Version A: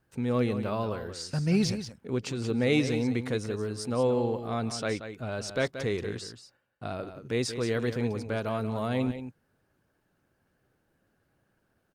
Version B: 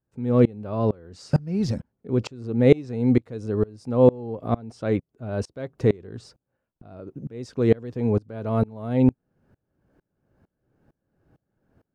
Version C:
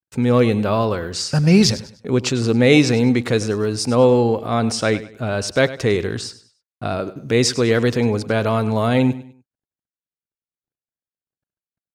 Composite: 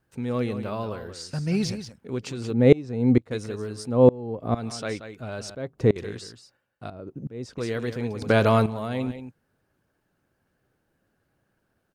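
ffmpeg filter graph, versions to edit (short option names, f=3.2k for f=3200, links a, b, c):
-filter_complex "[1:a]asplit=4[a][b][c][d];[0:a]asplit=6[e][f][g][h][i][j];[e]atrim=end=2.532[k];[a]atrim=start=2.528:end=3.312[l];[f]atrim=start=3.308:end=3.96[m];[b]atrim=start=3.8:end=4.66[n];[g]atrim=start=4.5:end=5.552[o];[c]atrim=start=5.548:end=5.962[p];[h]atrim=start=5.958:end=6.902[q];[d]atrim=start=6.898:end=7.582[r];[i]atrim=start=7.578:end=8.222[s];[2:a]atrim=start=8.218:end=8.662[t];[j]atrim=start=8.658[u];[k][l]acrossfade=d=0.004:c1=hsin:c2=hsin[v];[v][m]acrossfade=d=0.004:c1=hsin:c2=hsin[w];[w][n]acrossfade=d=0.16:c1=tri:c2=tri[x];[x][o]acrossfade=d=0.16:c1=tri:c2=tri[y];[y][p]acrossfade=d=0.004:c1=hsin:c2=hsin[z];[z][q]acrossfade=d=0.004:c1=hsin:c2=hsin[aa];[aa][r]acrossfade=d=0.004:c1=hsin:c2=hsin[ab];[ab][s]acrossfade=d=0.004:c1=hsin:c2=hsin[ac];[ac][t]acrossfade=d=0.004:c1=hsin:c2=hsin[ad];[ad][u]acrossfade=d=0.004:c1=hsin:c2=hsin"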